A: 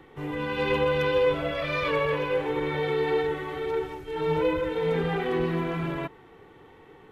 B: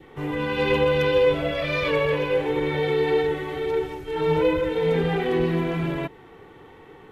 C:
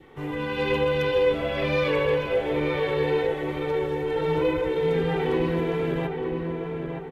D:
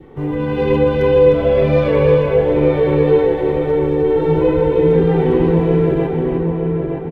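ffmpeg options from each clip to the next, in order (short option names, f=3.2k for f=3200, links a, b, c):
-af "adynamicequalizer=threshold=0.00562:dfrequency=1200:dqfactor=1.6:tfrequency=1200:tqfactor=1.6:attack=5:release=100:ratio=0.375:range=3:mode=cutabove:tftype=bell,volume=4.5dB"
-filter_complex "[0:a]asplit=2[a][b];[b]adelay=919,lowpass=f=1.8k:p=1,volume=-4dB,asplit=2[c][d];[d]adelay=919,lowpass=f=1.8k:p=1,volume=0.49,asplit=2[e][f];[f]adelay=919,lowpass=f=1.8k:p=1,volume=0.49,asplit=2[g][h];[h]adelay=919,lowpass=f=1.8k:p=1,volume=0.49,asplit=2[i][j];[j]adelay=919,lowpass=f=1.8k:p=1,volume=0.49,asplit=2[k][l];[l]adelay=919,lowpass=f=1.8k:p=1,volume=0.49[m];[a][c][e][g][i][k][m]amix=inputs=7:normalize=0,volume=-3dB"
-af "tiltshelf=f=970:g=8,aecho=1:1:306:0.562,volume=4.5dB"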